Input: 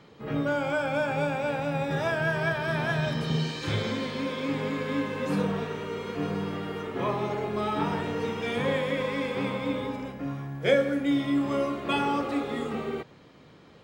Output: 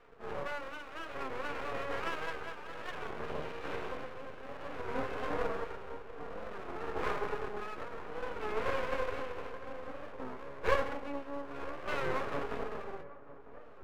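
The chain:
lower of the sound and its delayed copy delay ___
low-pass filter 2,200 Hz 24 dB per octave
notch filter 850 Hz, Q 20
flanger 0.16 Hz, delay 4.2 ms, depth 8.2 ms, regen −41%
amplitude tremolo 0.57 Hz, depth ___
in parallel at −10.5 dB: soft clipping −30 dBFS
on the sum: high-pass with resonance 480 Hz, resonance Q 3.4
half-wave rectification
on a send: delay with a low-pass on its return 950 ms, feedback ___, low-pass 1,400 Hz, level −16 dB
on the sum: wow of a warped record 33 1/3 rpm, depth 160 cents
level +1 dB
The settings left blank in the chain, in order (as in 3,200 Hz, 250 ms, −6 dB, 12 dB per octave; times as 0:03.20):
0.76 ms, 71%, 53%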